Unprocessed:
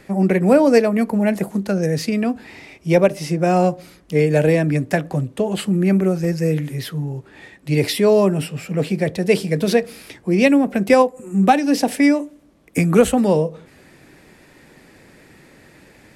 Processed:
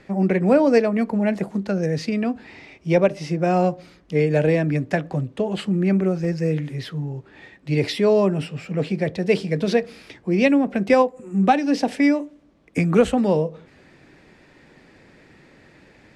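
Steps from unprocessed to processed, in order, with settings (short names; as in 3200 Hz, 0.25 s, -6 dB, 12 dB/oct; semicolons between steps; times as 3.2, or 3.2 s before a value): LPF 5300 Hz 12 dB/oct; gain -3 dB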